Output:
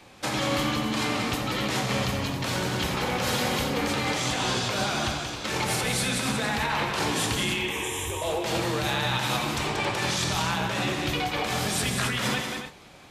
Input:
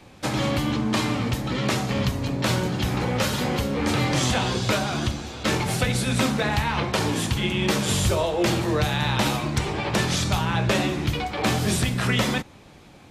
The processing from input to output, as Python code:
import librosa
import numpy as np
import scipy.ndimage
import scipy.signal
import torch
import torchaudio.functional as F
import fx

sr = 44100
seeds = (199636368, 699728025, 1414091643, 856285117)

p1 = fx.low_shelf(x, sr, hz=390.0, db=-9.0)
p2 = fx.over_compress(p1, sr, threshold_db=-28.0, ratio=-1.0)
p3 = fx.fixed_phaser(p2, sr, hz=930.0, stages=8, at=(7.54, 8.22))
y = p3 + fx.echo_multitap(p3, sr, ms=(86, 183, 272, 302), db=(-11.0, -6.0, -9.5, -18.0), dry=0)